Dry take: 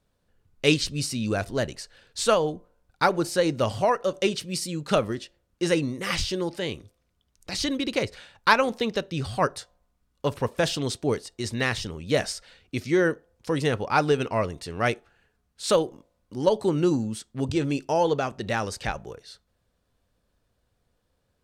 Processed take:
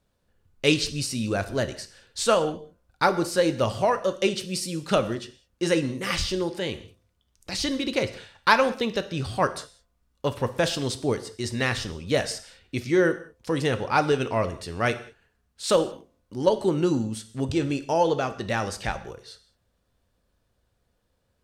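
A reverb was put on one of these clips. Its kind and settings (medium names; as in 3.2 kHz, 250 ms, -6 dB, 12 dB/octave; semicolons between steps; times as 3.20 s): gated-style reverb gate 230 ms falling, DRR 10 dB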